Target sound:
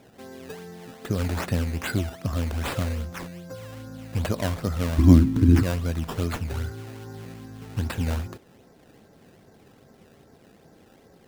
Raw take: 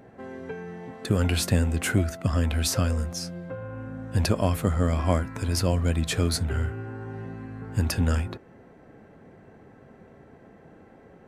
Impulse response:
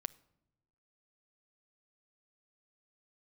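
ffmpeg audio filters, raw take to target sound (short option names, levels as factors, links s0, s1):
-filter_complex "[0:a]acrusher=samples=14:mix=1:aa=0.000001:lfo=1:lforange=14:lforate=2.5,asettb=1/sr,asplit=3[s0][s1][s2];[s0]atrim=end=4.984[s3];[s1]atrim=start=4.98:end=5.63,asetpts=PTS-STARTPTS,afade=t=in:d=0.004:c=qsin,afade=t=out:st=0.646:d=0.004:c=qsin,lowshelf=f=420:t=q:w=3:g=12[s4];[s2]atrim=start=5.626[s5];[s3][s4]acrossfade=d=0.004:c1=hsin:c2=qsin[s6];[s6][s5]acrossfade=d=0.004:c1=qsin:c2=hsin,volume=0.708"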